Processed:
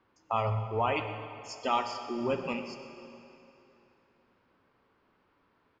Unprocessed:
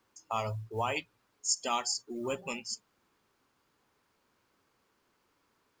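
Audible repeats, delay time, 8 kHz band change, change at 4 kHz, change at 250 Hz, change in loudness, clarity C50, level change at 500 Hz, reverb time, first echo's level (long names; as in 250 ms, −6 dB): 1, 127 ms, −18.5 dB, −5.0 dB, +5.5 dB, +2.0 dB, 7.0 dB, +5.0 dB, 2.9 s, −15.5 dB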